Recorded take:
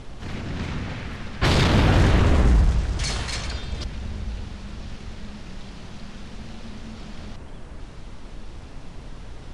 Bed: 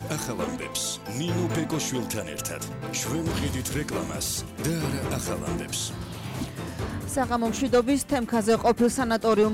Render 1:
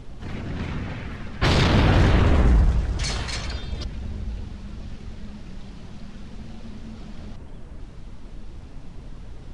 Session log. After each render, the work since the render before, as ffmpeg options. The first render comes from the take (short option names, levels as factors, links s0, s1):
-af "afftdn=nr=6:nf=-40"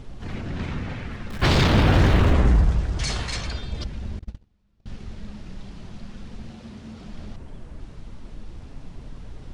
-filter_complex "[0:a]asettb=1/sr,asplit=3[s0][s1][s2];[s0]atrim=end=1.304[s3];[s1]atrim=start=1.3:end=2.33,asetpts=PTS-STARTPTS,afade=t=in:d=0.004:c=qsin,afade=t=out:st=1.026:d=0.004:c=qsin,aeval=exprs='val(0)+0.5*0.0188*sgn(val(0))':c=same[s4];[s2]atrim=start=2.326[s5];[s3][s4]acrossfade=d=0.004:c1=hsin:c2=qsin[s6];[s6][s5]acrossfade=d=0.004:c1=qsin:c2=hsin,asettb=1/sr,asplit=3[s7][s8][s9];[s7]atrim=end=4.194[s10];[s8]atrim=start=4.19:end=4.86,asetpts=PTS-STARTPTS,afade=t=in:d=0.004:c=qsin,afade=t=out:st=0.666:d=0.004:c=qsin,agate=range=0.0282:threshold=0.0398:ratio=16:release=100:detection=peak[s11];[s9]atrim=start=4.856[s12];[s10][s11]acrossfade=d=0.004:c1=hsin:c2=qsin[s13];[s13][s12]acrossfade=d=0.004:c1=qsin:c2=hsin,asettb=1/sr,asplit=3[s14][s15][s16];[s14]atrim=end=6.504[s17];[s15]atrim=start=6.5:end=7.06,asetpts=PTS-STARTPTS,afade=t=in:d=0.004:c=qsin,afade=t=out:st=0.556:d=0.004:c=qsin,highpass=70[s18];[s16]atrim=start=7.056[s19];[s17][s18]acrossfade=d=0.004:c1=hsin:c2=qsin[s20];[s20][s19]acrossfade=d=0.004:c1=qsin:c2=hsin"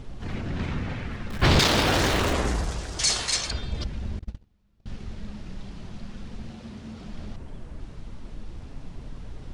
-filter_complex "[0:a]asettb=1/sr,asplit=3[s0][s1][s2];[s0]atrim=end=1.594[s3];[s1]atrim=start=1.59:end=3.51,asetpts=PTS-STARTPTS,afade=t=in:d=0.004:c=qsin,afade=t=out:st=1.916:d=0.004:c=qsin,bass=f=250:g=-11,treble=f=4000:g=12[s4];[s2]atrim=start=3.506[s5];[s3][s4]acrossfade=d=0.004:c1=hsin:c2=qsin[s6];[s6][s5]acrossfade=d=0.004:c1=qsin:c2=hsin"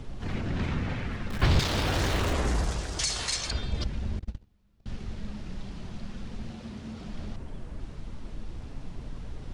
-filter_complex "[0:a]acrossover=split=130[s0][s1];[s1]acompressor=threshold=0.0447:ratio=5[s2];[s0][s2]amix=inputs=2:normalize=0"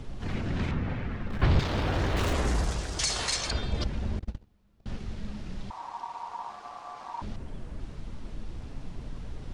-filter_complex "[0:a]asettb=1/sr,asplit=3[s0][s1][s2];[s0]atrim=end=0.714[s3];[s1]atrim=start=0.71:end=2.17,asetpts=PTS-STARTPTS,afade=t=in:d=0.004:c=qsin,afade=t=out:st=1.456:d=0.004:c=qsin,lowpass=f=1800:p=1[s4];[s2]atrim=start=2.166[s5];[s3][s4]acrossfade=d=0.004:c1=hsin:c2=qsin[s6];[s6][s5]acrossfade=d=0.004:c1=qsin:c2=hsin,asettb=1/sr,asplit=3[s7][s8][s9];[s7]atrim=end=3.034[s10];[s8]atrim=start=3.03:end=4.98,asetpts=PTS-STARTPTS,afade=t=in:d=0.004:c=qsin,afade=t=out:st=1.946:d=0.004:c=qsin,equalizer=f=660:t=o:w=2.9:g=4.5[s11];[s9]atrim=start=4.976[s12];[s10][s11]acrossfade=d=0.004:c1=hsin:c2=qsin[s13];[s13][s12]acrossfade=d=0.004:c1=qsin:c2=hsin,asettb=1/sr,asplit=3[s14][s15][s16];[s14]atrim=end=5.704[s17];[s15]atrim=start=5.7:end=7.22,asetpts=PTS-STARTPTS,afade=t=in:d=0.004:c=qsin,afade=t=out:st=1.516:d=0.004:c=qsin,aeval=exprs='val(0)*sin(2*PI*940*n/s)':c=same[s18];[s16]atrim=start=7.216[s19];[s17][s18]acrossfade=d=0.004:c1=hsin:c2=qsin[s20];[s20][s19]acrossfade=d=0.004:c1=qsin:c2=hsin"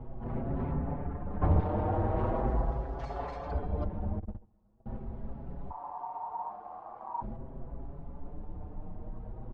-filter_complex "[0:a]lowpass=f=810:t=q:w=1.9,asplit=2[s0][s1];[s1]adelay=5.8,afreqshift=0.42[s2];[s0][s2]amix=inputs=2:normalize=1"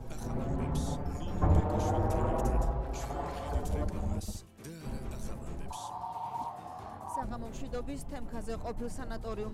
-filter_complex "[1:a]volume=0.119[s0];[0:a][s0]amix=inputs=2:normalize=0"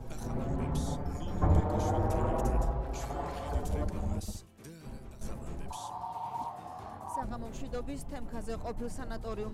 -filter_complex "[0:a]asettb=1/sr,asplit=3[s0][s1][s2];[s0]atrim=end=0.834[s3];[s1]atrim=start=0.83:end=2,asetpts=PTS-STARTPTS,afade=t=in:d=0.004:c=qsin,afade=t=out:st=1.166:d=0.004:c=qsin,bandreject=f=2700:w=13[s4];[s2]atrim=start=1.996[s5];[s3][s4]acrossfade=d=0.004:c1=hsin:c2=qsin[s6];[s6][s5]acrossfade=d=0.004:c1=qsin:c2=hsin,asplit=2[s7][s8];[s7]atrim=end=5.21,asetpts=PTS-STARTPTS,afade=t=out:st=4.24:d=0.97:silence=0.316228[s9];[s8]atrim=start=5.21,asetpts=PTS-STARTPTS,afade=t=in:d=0.004:c=hsin:silence=0.316228[s10];[s9][s10]concat=n=2:v=0:a=1"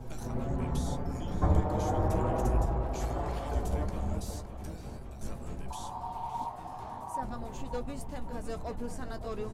-filter_complex "[0:a]asplit=2[s0][s1];[s1]adelay=16,volume=0.299[s2];[s0][s2]amix=inputs=2:normalize=0,asplit=2[s3][s4];[s4]adelay=564,lowpass=f=3200:p=1,volume=0.335,asplit=2[s5][s6];[s6]adelay=564,lowpass=f=3200:p=1,volume=0.54,asplit=2[s7][s8];[s8]adelay=564,lowpass=f=3200:p=1,volume=0.54,asplit=2[s9][s10];[s10]adelay=564,lowpass=f=3200:p=1,volume=0.54,asplit=2[s11][s12];[s12]adelay=564,lowpass=f=3200:p=1,volume=0.54,asplit=2[s13][s14];[s14]adelay=564,lowpass=f=3200:p=1,volume=0.54[s15];[s3][s5][s7][s9][s11][s13][s15]amix=inputs=7:normalize=0"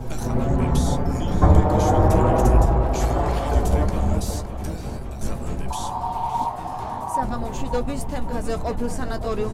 -af "volume=3.98,alimiter=limit=0.708:level=0:latency=1"